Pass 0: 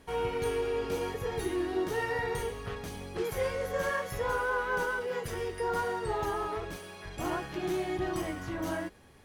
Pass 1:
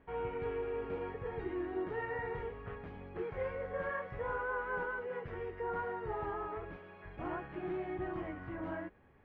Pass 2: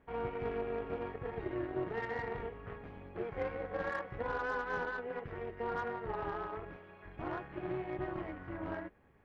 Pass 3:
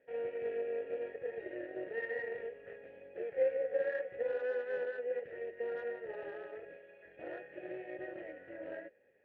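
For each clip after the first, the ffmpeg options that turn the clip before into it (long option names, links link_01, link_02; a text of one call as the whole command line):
ffmpeg -i in.wav -af "lowpass=frequency=2300:width=0.5412,lowpass=frequency=2300:width=1.3066,volume=-6.5dB" out.wav
ffmpeg -i in.wav -af "tremolo=f=240:d=0.571,aeval=exprs='0.0447*(cos(1*acos(clip(val(0)/0.0447,-1,1)))-cos(1*PI/2))+0.00178*(cos(7*acos(clip(val(0)/0.0447,-1,1)))-cos(7*PI/2))':channel_layout=same,volume=3.5dB" out.wav
ffmpeg -i in.wav -filter_complex "[0:a]asplit=3[link_01][link_02][link_03];[link_01]bandpass=frequency=530:width_type=q:width=8,volume=0dB[link_04];[link_02]bandpass=frequency=1840:width_type=q:width=8,volume=-6dB[link_05];[link_03]bandpass=frequency=2480:width_type=q:width=8,volume=-9dB[link_06];[link_04][link_05][link_06]amix=inputs=3:normalize=0,volume=8.5dB" out.wav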